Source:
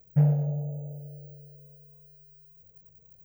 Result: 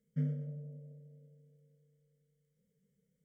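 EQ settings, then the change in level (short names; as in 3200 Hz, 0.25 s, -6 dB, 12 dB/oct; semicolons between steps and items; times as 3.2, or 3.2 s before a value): vowel filter i; high shelf 2500 Hz +11.5 dB; fixed phaser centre 500 Hz, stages 8; +10.0 dB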